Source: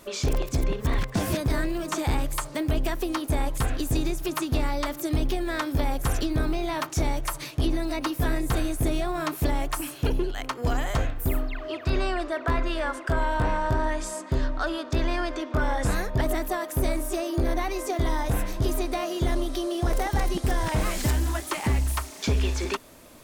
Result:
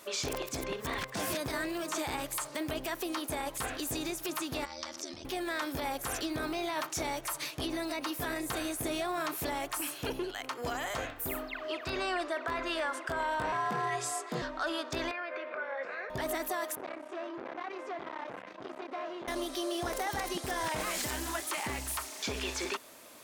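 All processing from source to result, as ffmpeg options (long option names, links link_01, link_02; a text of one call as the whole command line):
ffmpeg -i in.wav -filter_complex "[0:a]asettb=1/sr,asplit=3[link_01][link_02][link_03];[link_01]atrim=end=4.654[link_04];[link_02]atrim=start=4.65:end=5.25,asetpts=PTS-STARTPTS,afade=type=in:duration=0.004:curve=qsin,afade=type=out:start_time=0.596:duration=0.004:curve=qsin,aeval=exprs='val(0)*sin(2*PI*40*n/s)':channel_layout=same,acompressor=threshold=-33dB:ratio=12:attack=3.2:release=140:knee=1:detection=peak,lowpass=frequency=5600:width_type=q:width=5.5[link_05];[link_03]atrim=start=5.246[link_06];[link_04][link_05]acrossfade=duration=0.004:curve1=hsin:curve2=qsin[link_07];[link_07][link_06]acrossfade=duration=0.004:curve1=qsin:curve2=hsin,asettb=1/sr,asplit=3[link_08][link_09][link_10];[link_08]atrim=end=13.524[link_11];[link_09]atrim=start=13.52:end=14.42,asetpts=PTS-STARTPTS,afade=type=in:duration=0.004:curve=qsin,afade=type=out:start_time=0.896:duration=0.004:curve=qsin,highpass=frequency=46:poles=1,afreqshift=94,asoftclip=type=hard:threshold=-19.5dB[link_12];[link_10]atrim=start=14.416[link_13];[link_11][link_12]acrossfade=duration=0.004:curve1=hsin:curve2=qsin[link_14];[link_14][link_13]acrossfade=duration=0.004:curve1=qsin:curve2=hsin,asettb=1/sr,asplit=3[link_15][link_16][link_17];[link_15]atrim=end=15.114[link_18];[link_16]atrim=start=15.11:end=16.1,asetpts=PTS-STARTPTS,afade=type=in:duration=0.004:curve=qsin,afade=type=out:start_time=0.986:duration=0.004:curve=qsin,acompressor=threshold=-31dB:ratio=6:attack=3.2:release=140:knee=1:detection=peak,highpass=frequency=280:width=0.5412,highpass=frequency=280:width=1.3066,equalizer=frequency=300:width_type=q:width=4:gain=-9,equalizer=frequency=550:width_type=q:width=4:gain=8,equalizer=frequency=870:width_type=q:width=4:gain=-5,equalizer=frequency=1500:width_type=q:width=4:gain=5,equalizer=frequency=2300:width_type=q:width=4:gain=8,equalizer=frequency=3300:width_type=q:width=4:gain=-8,lowpass=frequency=3400:width=0.5412,lowpass=frequency=3400:width=1.3066,asplit=2[link_19][link_20];[link_20]adelay=18,volume=-13dB[link_21];[link_19][link_21]amix=inputs=2:normalize=0,atrim=end_sample=43659[link_22];[link_17]atrim=start=16.096[link_23];[link_18][link_22]acrossfade=duration=0.004:curve1=hsin:curve2=qsin[link_24];[link_24][link_23]acrossfade=duration=0.004:curve1=qsin:curve2=hsin,asettb=1/sr,asplit=3[link_25][link_26][link_27];[link_25]atrim=end=16.754[link_28];[link_26]atrim=start=16.75:end=19.28,asetpts=PTS-STARTPTS,afade=type=in:duration=0.004:curve=qsin,afade=type=out:start_time=2.526:duration=0.004:curve=qsin,aeval=exprs='(tanh(35.5*val(0)+0.55)-tanh(0.55))/35.5':channel_layout=same,highpass=190,lowpass=2300[link_29];[link_27]atrim=start=19.276[link_30];[link_28][link_29]acrossfade=duration=0.004:curve1=hsin:curve2=qsin[link_31];[link_31][link_30]acrossfade=duration=0.004:curve1=qsin:curve2=hsin,highpass=frequency=640:poles=1,alimiter=level_in=0.5dB:limit=-24dB:level=0:latency=1:release=25,volume=-0.5dB" out.wav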